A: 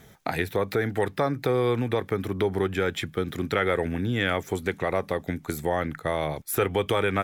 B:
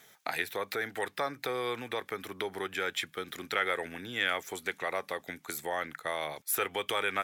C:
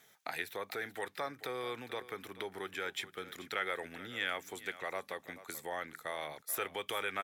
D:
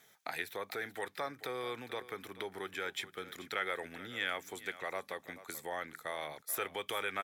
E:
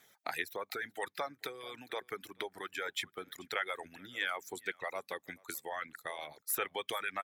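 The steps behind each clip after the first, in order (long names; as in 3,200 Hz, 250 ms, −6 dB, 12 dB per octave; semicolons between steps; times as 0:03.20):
high-pass filter 1,500 Hz 6 dB per octave
single-tap delay 434 ms −15.5 dB; level −6 dB
notch filter 2,800 Hz, Q 26
harmonic and percussive parts rebalanced harmonic −8 dB; reverb reduction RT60 1.6 s; level +3 dB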